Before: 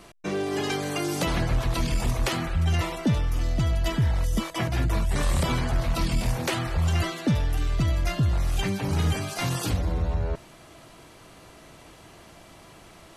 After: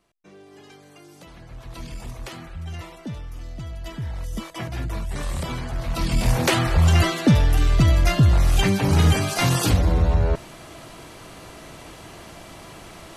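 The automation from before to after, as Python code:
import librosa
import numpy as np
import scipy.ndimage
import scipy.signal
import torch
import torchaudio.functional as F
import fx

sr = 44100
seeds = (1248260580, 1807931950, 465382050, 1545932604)

y = fx.gain(x, sr, db=fx.line((1.39, -19.5), (1.81, -10.0), (3.71, -10.0), (4.45, -4.0), (5.73, -4.0), (6.37, 7.5)))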